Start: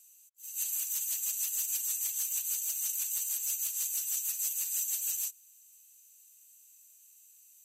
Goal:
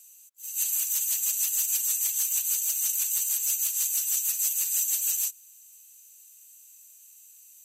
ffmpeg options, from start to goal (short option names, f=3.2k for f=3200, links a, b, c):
-af "highpass=170,volume=6.5dB"